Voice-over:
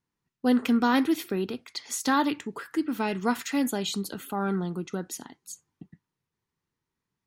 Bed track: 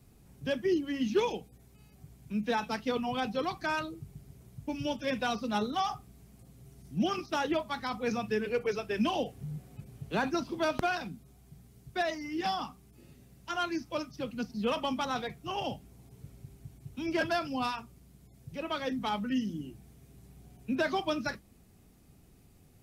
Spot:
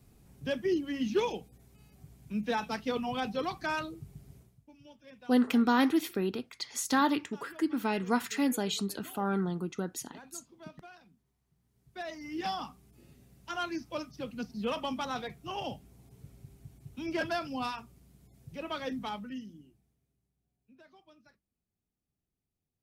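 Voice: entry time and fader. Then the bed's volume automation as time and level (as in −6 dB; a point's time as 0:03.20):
4.85 s, −2.5 dB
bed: 0:04.38 −1 dB
0:04.66 −21.5 dB
0:11.53 −21.5 dB
0:12.30 −2.5 dB
0:18.96 −2.5 dB
0:20.33 −29 dB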